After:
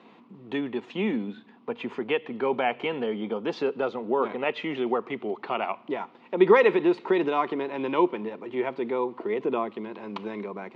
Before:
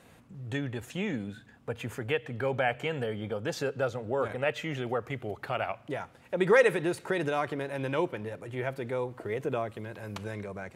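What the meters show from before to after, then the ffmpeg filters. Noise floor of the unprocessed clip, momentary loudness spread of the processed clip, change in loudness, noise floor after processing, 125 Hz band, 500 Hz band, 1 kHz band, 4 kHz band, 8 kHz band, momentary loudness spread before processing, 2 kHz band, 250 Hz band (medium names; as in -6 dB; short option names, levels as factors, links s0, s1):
-57 dBFS, 11 LU, +4.5 dB, -54 dBFS, -7.0 dB, +4.5 dB, +6.5 dB, +2.5 dB, under -15 dB, 10 LU, +0.5 dB, +7.0 dB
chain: -af "highpass=f=210:w=0.5412,highpass=f=210:w=1.3066,equalizer=f=220:t=q:w=4:g=6,equalizer=f=370:t=q:w=4:g=6,equalizer=f=570:t=q:w=4:g=-6,equalizer=f=1000:t=q:w=4:g=8,equalizer=f=1600:t=q:w=4:g=-9,lowpass=f=3900:w=0.5412,lowpass=f=3900:w=1.3066,volume=1.58"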